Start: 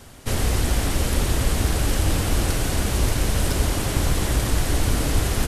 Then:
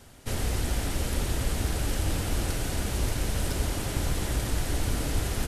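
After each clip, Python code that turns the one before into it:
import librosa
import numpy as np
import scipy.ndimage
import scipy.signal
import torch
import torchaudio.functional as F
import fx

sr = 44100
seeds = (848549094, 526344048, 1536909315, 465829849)

y = fx.notch(x, sr, hz=1100.0, q=17.0)
y = F.gain(torch.from_numpy(y), -7.0).numpy()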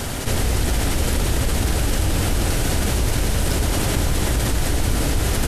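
y = fx.env_flatten(x, sr, amount_pct=70)
y = F.gain(torch.from_numpy(y), 5.0).numpy()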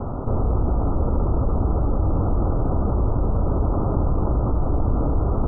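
y = scipy.signal.sosfilt(scipy.signal.butter(16, 1300.0, 'lowpass', fs=sr, output='sos'), x)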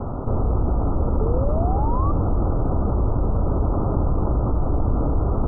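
y = fx.spec_paint(x, sr, seeds[0], shape='rise', start_s=1.2, length_s=0.92, low_hz=420.0, high_hz=1200.0, level_db=-29.0)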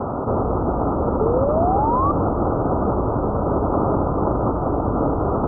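y = fx.highpass(x, sr, hz=340.0, slope=6)
y = F.gain(torch.from_numpy(y), 9.0).numpy()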